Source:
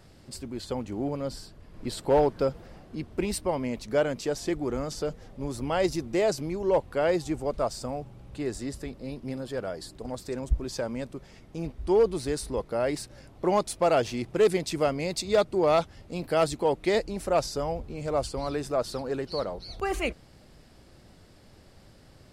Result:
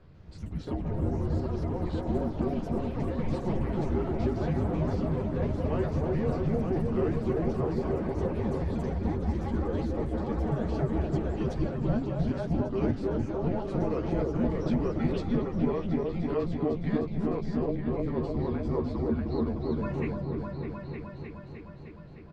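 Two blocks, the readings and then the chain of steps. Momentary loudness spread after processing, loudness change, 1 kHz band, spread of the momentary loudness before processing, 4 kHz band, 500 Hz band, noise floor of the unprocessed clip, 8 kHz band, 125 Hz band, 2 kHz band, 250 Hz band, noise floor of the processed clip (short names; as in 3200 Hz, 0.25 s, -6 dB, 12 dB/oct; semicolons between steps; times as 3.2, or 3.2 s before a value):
6 LU, -1.5 dB, -6.0 dB, 14 LU, -13.5 dB, -5.0 dB, -54 dBFS, under -20 dB, +7.5 dB, -7.5 dB, +3.5 dB, -44 dBFS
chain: compressor, threshold -29 dBFS, peak gain reduction 11.5 dB; frequency shift -190 Hz; tape spacing loss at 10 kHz 36 dB; doubler 13 ms -5 dB; repeats that get brighter 0.306 s, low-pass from 750 Hz, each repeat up 1 oct, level 0 dB; echoes that change speed 0.14 s, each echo +5 st, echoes 3, each echo -6 dB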